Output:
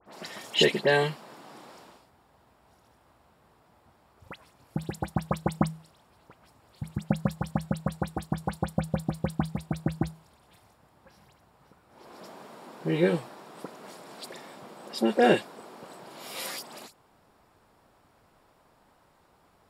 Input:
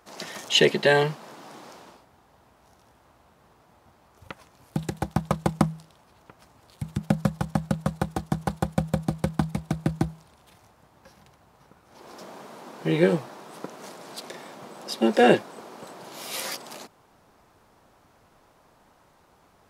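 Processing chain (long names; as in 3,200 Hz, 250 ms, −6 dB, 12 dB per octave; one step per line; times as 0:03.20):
notch filter 6,200 Hz, Q 7.6
all-pass dispersion highs, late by 67 ms, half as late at 2,700 Hz
level −3.5 dB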